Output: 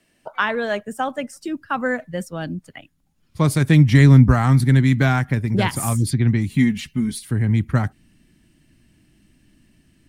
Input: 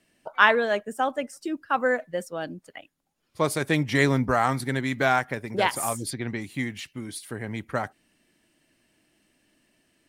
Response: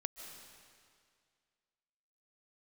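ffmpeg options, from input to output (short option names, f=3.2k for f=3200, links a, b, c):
-filter_complex "[0:a]asettb=1/sr,asplit=3[a][b][c];[a]atrim=end=6.494[d];[b]atrim=start=6.49:end=7.23,asetpts=PTS-STARTPTS,afade=t=in:d=0.004:c=qsin,afade=t=out:st=0.736:d=0.004:c=qsin,aecho=1:1:4.7:0.69,atrim=end_sample=32634[e];[c]atrim=start=7.226[f];[d][e]acrossfade=d=0.004:c1=hsin:c2=qsin[g];[g][f]acrossfade=d=0.004:c1=qsin:c2=hsin,asubboost=boost=9:cutoff=180,acrossover=split=340[h][i];[i]acompressor=threshold=-21dB:ratio=5[j];[h][j]amix=inputs=2:normalize=0,volume=3.5dB"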